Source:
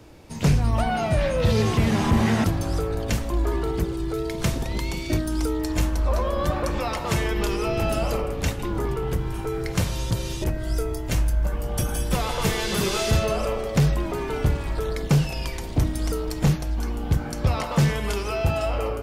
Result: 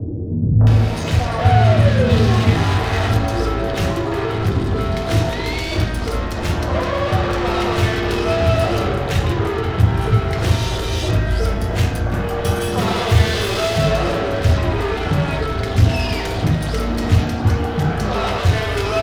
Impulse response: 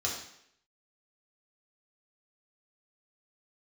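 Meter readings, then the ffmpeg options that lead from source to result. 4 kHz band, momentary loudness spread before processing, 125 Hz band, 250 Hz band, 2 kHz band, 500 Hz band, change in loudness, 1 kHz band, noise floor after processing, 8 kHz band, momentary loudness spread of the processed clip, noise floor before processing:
+7.0 dB, 6 LU, +8.0 dB, +4.5 dB, +8.0 dB, +6.5 dB, +6.5 dB, +8.0 dB, -23 dBFS, +0.5 dB, 7 LU, -31 dBFS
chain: -filter_complex "[0:a]tiltshelf=f=970:g=4,acompressor=mode=upward:threshold=0.1:ratio=2.5,asplit=2[s0][s1];[s1]highpass=f=720:p=1,volume=31.6,asoftclip=type=tanh:threshold=0.398[s2];[s0][s2]amix=inputs=2:normalize=0,lowpass=f=5200:p=1,volume=0.501,acrossover=split=360|1200[s3][s4][s5];[s4]adelay=610[s6];[s5]adelay=670[s7];[s3][s6][s7]amix=inputs=3:normalize=0,asplit=2[s8][s9];[1:a]atrim=start_sample=2205,lowpass=5100,lowshelf=f=390:g=11.5[s10];[s9][s10]afir=irnorm=-1:irlink=0,volume=0.473[s11];[s8][s11]amix=inputs=2:normalize=0,volume=0.398"

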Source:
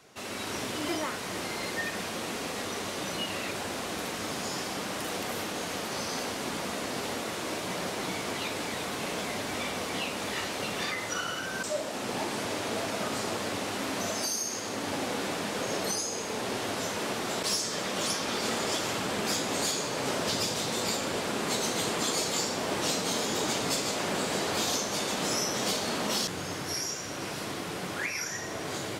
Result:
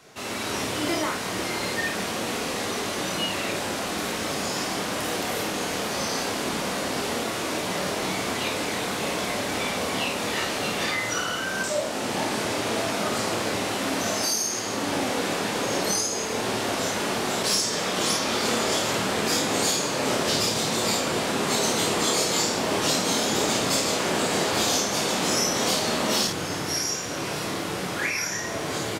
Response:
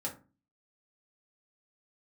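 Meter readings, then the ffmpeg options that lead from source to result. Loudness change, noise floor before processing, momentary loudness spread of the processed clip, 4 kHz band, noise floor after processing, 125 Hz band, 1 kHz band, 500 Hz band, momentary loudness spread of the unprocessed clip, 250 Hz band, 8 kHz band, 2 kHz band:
+6.0 dB, -36 dBFS, 6 LU, +6.0 dB, -30 dBFS, +6.0 dB, +6.0 dB, +6.0 dB, 6 LU, +6.0 dB, +6.0 dB, +6.0 dB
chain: -af "aecho=1:1:27|52:0.562|0.531,volume=1.58"

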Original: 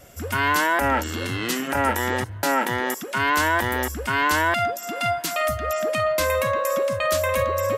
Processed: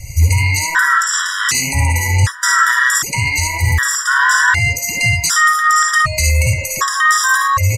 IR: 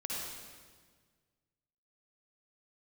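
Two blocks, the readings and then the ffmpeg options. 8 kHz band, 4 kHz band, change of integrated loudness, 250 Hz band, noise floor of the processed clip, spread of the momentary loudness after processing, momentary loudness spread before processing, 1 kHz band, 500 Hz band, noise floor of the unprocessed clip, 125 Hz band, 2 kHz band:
+16.5 dB, +10.0 dB, +9.5 dB, -4.0 dB, -25 dBFS, 5 LU, 6 LU, +6.5 dB, -10.5 dB, -35 dBFS, +16.5 dB, +11.5 dB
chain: -filter_complex "[0:a]acontrast=65,firequalizer=gain_entry='entry(110,0);entry(220,-27);entry(680,-30);entry(990,-12);entry(1900,-4);entry(2800,-16);entry(5100,-2);entry(7500,-1);entry(12000,-14)':delay=0.05:min_phase=1[s0];[1:a]atrim=start_sample=2205,atrim=end_sample=3528[s1];[s0][s1]afir=irnorm=-1:irlink=0,alimiter=level_in=14.1:limit=0.891:release=50:level=0:latency=1,afftfilt=real='re*gt(sin(2*PI*0.66*pts/sr)*(1-2*mod(floor(b*sr/1024/980),2)),0)':imag='im*gt(sin(2*PI*0.66*pts/sr)*(1-2*mod(floor(b*sr/1024/980),2)),0)':win_size=1024:overlap=0.75,volume=0.891"

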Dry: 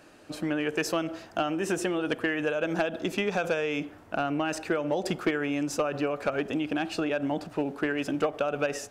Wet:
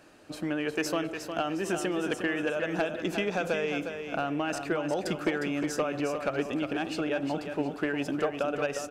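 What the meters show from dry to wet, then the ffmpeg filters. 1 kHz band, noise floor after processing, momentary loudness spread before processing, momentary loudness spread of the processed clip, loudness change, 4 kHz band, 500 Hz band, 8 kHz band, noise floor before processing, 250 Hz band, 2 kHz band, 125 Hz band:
-1.0 dB, -42 dBFS, 3 LU, 3 LU, -1.5 dB, -1.0 dB, -1.5 dB, -1.5 dB, -52 dBFS, -1.5 dB, -1.5 dB, -1.0 dB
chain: -af "aecho=1:1:358|716|1074|1432:0.422|0.143|0.0487|0.0166,volume=0.794"

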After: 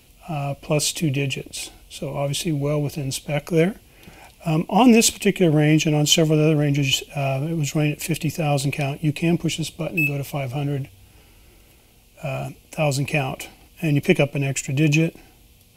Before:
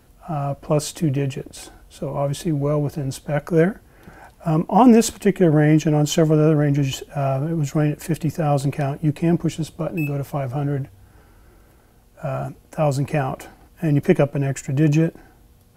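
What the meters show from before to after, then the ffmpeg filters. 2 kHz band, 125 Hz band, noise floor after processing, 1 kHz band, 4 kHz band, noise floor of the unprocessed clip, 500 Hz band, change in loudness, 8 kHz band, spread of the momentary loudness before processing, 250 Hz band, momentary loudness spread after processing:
+5.5 dB, -1.5 dB, -53 dBFS, -3.0 dB, +9.5 dB, -53 dBFS, -2.0 dB, -0.5 dB, +6.5 dB, 13 LU, -1.5 dB, 14 LU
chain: -af "highshelf=f=2000:t=q:w=3:g=7.5,volume=0.841"

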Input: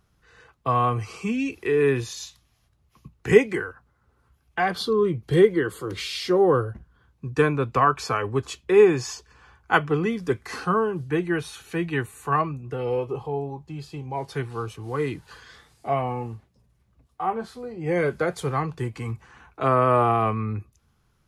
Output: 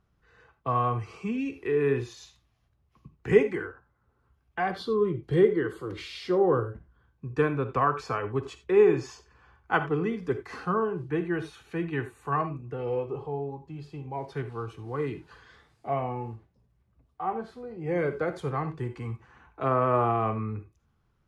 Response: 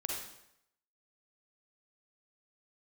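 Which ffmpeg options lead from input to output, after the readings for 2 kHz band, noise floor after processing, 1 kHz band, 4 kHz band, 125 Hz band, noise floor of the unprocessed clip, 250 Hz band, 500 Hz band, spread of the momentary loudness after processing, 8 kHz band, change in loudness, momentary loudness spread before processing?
-6.5 dB, -71 dBFS, -5.0 dB, -10.0 dB, -4.5 dB, -67 dBFS, -4.0 dB, -4.0 dB, 15 LU, under -10 dB, -4.5 dB, 16 LU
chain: -filter_complex "[0:a]lowpass=f=2100:p=1,asplit=2[s0][s1];[1:a]atrim=start_sample=2205,atrim=end_sample=4410[s2];[s1][s2]afir=irnorm=-1:irlink=0,volume=0.447[s3];[s0][s3]amix=inputs=2:normalize=0,volume=0.447"

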